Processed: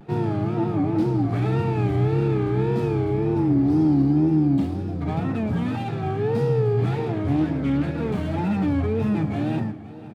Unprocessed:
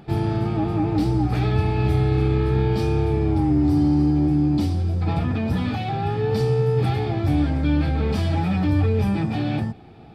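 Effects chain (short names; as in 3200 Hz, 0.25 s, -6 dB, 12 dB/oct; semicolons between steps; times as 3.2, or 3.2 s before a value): median filter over 9 samples; HPF 110 Hz 24 dB/oct; high shelf 3400 Hz -8.5 dB; notch 790 Hz, Q 20; feedback echo 0.518 s, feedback 48%, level -18 dB; wow and flutter 120 cents; on a send at -15.5 dB: reverb RT60 0.85 s, pre-delay 35 ms; 6.92–7.94 on the sum: Doppler distortion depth 0.17 ms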